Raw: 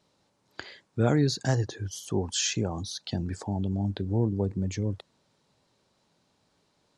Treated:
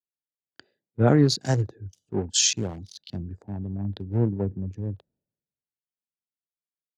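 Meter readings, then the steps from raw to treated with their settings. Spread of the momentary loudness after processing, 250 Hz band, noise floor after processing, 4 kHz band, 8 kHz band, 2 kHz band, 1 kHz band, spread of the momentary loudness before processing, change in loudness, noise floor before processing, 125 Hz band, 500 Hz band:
17 LU, +2.5 dB, below −85 dBFS, +5.0 dB, +7.0 dB, +1.0 dB, +2.5 dB, 14 LU, +4.0 dB, −71 dBFS, +2.0 dB, +3.0 dB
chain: adaptive Wiener filter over 41 samples
echo ahead of the sound 35 ms −23 dB
multiband upward and downward expander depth 100%

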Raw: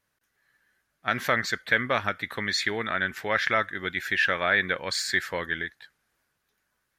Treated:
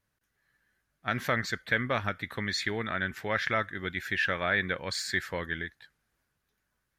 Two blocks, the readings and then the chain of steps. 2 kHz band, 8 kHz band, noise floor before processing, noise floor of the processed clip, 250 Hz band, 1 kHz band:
−5.0 dB, −5.0 dB, −77 dBFS, −80 dBFS, −0.5 dB, −4.5 dB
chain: low-shelf EQ 210 Hz +10 dB
level −5 dB

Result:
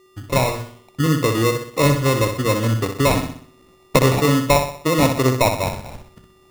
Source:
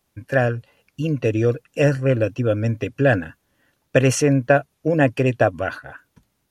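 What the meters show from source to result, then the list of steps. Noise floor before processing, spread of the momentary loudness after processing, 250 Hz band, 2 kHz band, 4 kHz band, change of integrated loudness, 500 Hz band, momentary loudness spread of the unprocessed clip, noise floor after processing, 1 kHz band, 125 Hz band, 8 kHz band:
−71 dBFS, 8 LU, +1.5 dB, −1.0 dB, +10.5 dB, +1.5 dB, 0.0 dB, 10 LU, −53 dBFS, +6.5 dB, +1.5 dB, +5.0 dB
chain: camcorder AGC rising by 13 dB per second
mains-hum notches 60/120/180/240 Hz
steady tone 1,200 Hz −50 dBFS
decimation without filtering 28×
flutter between parallel walls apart 10.7 metres, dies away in 0.53 s

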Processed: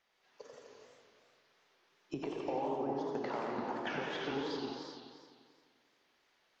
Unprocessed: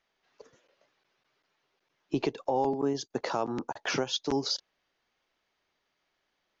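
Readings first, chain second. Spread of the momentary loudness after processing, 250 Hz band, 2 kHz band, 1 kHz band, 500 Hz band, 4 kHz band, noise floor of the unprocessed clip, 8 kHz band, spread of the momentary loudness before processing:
19 LU, −6.5 dB, −4.5 dB, −5.5 dB, −6.0 dB, −12.0 dB, −79 dBFS, can't be measured, 5 LU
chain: low-shelf EQ 160 Hz −7 dB
treble cut that deepens with the level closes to 2,100 Hz, closed at −29.5 dBFS
downward compressor 2.5 to 1, threshold −42 dBFS, peak gain reduction 12 dB
reverb whose tail is shaped and stops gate 440 ms flat, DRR −0.5 dB
feedback echo with a swinging delay time 87 ms, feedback 73%, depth 212 cents, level −6 dB

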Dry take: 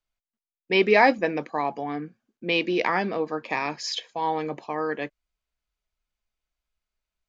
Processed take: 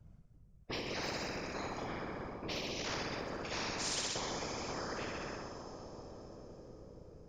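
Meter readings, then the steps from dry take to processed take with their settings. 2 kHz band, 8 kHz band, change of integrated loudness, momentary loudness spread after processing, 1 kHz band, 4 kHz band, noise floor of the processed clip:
−15.5 dB, can't be measured, −15.0 dB, 16 LU, −16.5 dB, −7.5 dB, −61 dBFS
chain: low-pass that shuts in the quiet parts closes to 1,800 Hz, open at −20.5 dBFS
octave-band graphic EQ 250/2,000/4,000 Hz −6/−6/−3 dB
harmonic and percussive parts rebalanced percussive −12 dB
flat-topped bell 1,700 Hz −15 dB 3 octaves
flutter between parallel walls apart 10.8 metres, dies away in 0.87 s
downward compressor 4 to 1, threshold −46 dBFS, peak gain reduction 23 dB
random phases in short frames
dense smooth reverb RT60 4.7 s, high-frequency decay 1×, DRR 19.5 dB
every bin compressed towards the loudest bin 4 to 1
level +8 dB

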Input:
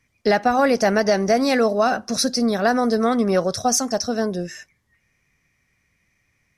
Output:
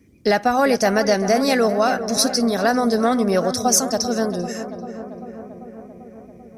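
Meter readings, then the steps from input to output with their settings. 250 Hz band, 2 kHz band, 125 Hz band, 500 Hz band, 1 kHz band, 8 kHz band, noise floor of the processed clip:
+0.5 dB, +0.5 dB, +1.0 dB, +0.5 dB, +0.5 dB, +4.0 dB, −44 dBFS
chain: high-shelf EQ 8,700 Hz +11 dB
noise in a band 48–340 Hz −54 dBFS
on a send: feedback echo with a low-pass in the loop 392 ms, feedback 74%, low-pass 2,000 Hz, level −11 dB

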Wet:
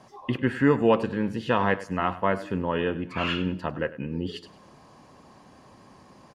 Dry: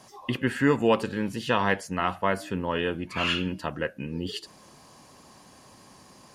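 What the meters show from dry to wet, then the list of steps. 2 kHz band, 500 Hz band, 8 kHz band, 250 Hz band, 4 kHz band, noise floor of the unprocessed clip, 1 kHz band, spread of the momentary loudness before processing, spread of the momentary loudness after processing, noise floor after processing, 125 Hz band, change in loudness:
−1.5 dB, +2.0 dB, below −10 dB, +2.0 dB, −4.0 dB, −53 dBFS, +1.0 dB, 10 LU, 10 LU, −53 dBFS, +2.0 dB, +1.0 dB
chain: low-pass filter 1,700 Hz 6 dB per octave
repeating echo 99 ms, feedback 33%, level −17 dB
level +2 dB

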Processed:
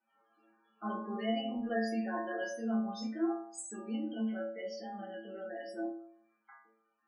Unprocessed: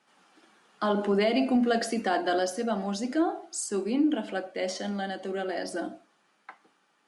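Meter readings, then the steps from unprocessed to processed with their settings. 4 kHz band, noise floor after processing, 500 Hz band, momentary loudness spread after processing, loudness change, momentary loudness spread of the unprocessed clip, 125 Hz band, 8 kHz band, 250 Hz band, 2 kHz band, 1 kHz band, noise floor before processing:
−11.0 dB, −78 dBFS, −10.5 dB, 9 LU, −9.0 dB, 9 LU, can't be measured, −11.5 dB, −7.5 dB, −9.0 dB, −10.0 dB, −69 dBFS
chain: multi-voice chorus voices 4, 0.75 Hz, delay 27 ms, depth 4.6 ms
spectral peaks only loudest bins 32
stiff-string resonator 110 Hz, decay 0.65 s, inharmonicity 0.002
level +8.5 dB

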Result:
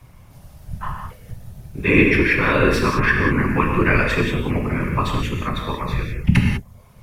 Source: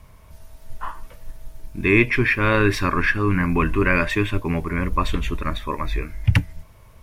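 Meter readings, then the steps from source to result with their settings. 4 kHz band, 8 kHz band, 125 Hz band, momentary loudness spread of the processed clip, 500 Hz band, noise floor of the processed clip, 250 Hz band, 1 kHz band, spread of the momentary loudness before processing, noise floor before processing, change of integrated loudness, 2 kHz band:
+2.5 dB, +2.5 dB, +2.5 dB, 17 LU, +2.5 dB, −46 dBFS, +3.0 dB, +2.0 dB, 15 LU, −48 dBFS, +2.0 dB, +2.0 dB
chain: reverb reduction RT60 0.61 s
frequency shifter −13 Hz
random phases in short frames
reverb whose tail is shaped and stops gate 220 ms flat, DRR 0.5 dB

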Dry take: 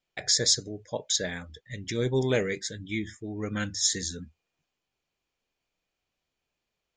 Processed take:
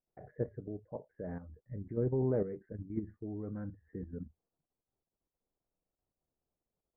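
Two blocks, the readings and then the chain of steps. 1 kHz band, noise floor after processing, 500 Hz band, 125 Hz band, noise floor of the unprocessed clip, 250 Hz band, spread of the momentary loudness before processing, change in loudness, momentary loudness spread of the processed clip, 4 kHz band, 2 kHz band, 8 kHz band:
−10.5 dB, below −85 dBFS, −6.0 dB, −4.5 dB, −85 dBFS, −5.0 dB, 14 LU, −11.0 dB, 15 LU, below −40 dB, −25.5 dB, below −40 dB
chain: Gaussian smoothing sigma 8.8 samples
output level in coarse steps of 10 dB

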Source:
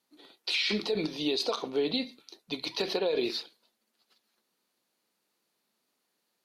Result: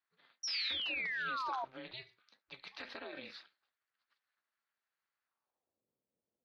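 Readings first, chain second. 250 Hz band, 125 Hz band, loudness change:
−21.5 dB, −17.5 dB, −7.5 dB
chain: band-pass filter sweep 1,600 Hz → 350 Hz, 0:05.22–0:05.85
sound drawn into the spectrogram fall, 0:00.43–0:01.65, 790–5,800 Hz −35 dBFS
ring modulation 130 Hz

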